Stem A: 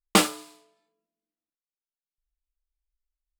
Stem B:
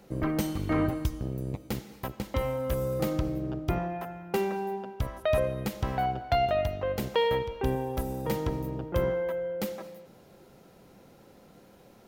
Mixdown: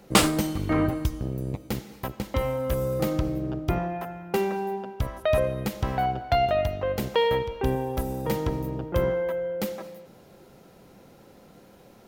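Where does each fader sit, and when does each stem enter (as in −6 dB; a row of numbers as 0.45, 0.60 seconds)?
0.0, +3.0 decibels; 0.00, 0.00 seconds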